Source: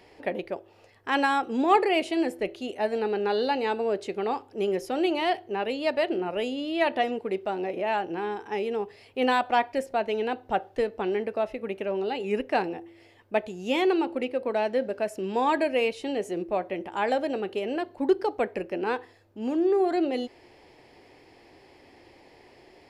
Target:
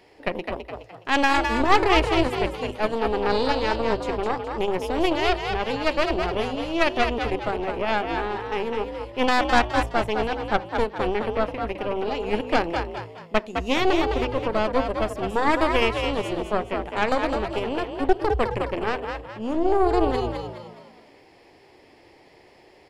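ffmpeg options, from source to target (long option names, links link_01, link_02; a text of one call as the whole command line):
ffmpeg -i in.wav -filter_complex "[0:a]bandreject=frequency=50:width_type=h:width=6,bandreject=frequency=100:width_type=h:width=6,bandreject=frequency=150:width_type=h:width=6,bandreject=frequency=200:width_type=h:width=6,bandreject=frequency=250:width_type=h:width=6,aeval=exprs='0.316*(cos(1*acos(clip(val(0)/0.316,-1,1)))-cos(1*PI/2))+0.126*(cos(4*acos(clip(val(0)/0.316,-1,1)))-cos(4*PI/2))':channel_layout=same,asplit=6[link_01][link_02][link_03][link_04][link_05][link_06];[link_02]adelay=209,afreqshift=55,volume=-5.5dB[link_07];[link_03]adelay=418,afreqshift=110,volume=-13.5dB[link_08];[link_04]adelay=627,afreqshift=165,volume=-21.4dB[link_09];[link_05]adelay=836,afreqshift=220,volume=-29.4dB[link_10];[link_06]adelay=1045,afreqshift=275,volume=-37.3dB[link_11];[link_01][link_07][link_08][link_09][link_10][link_11]amix=inputs=6:normalize=0" out.wav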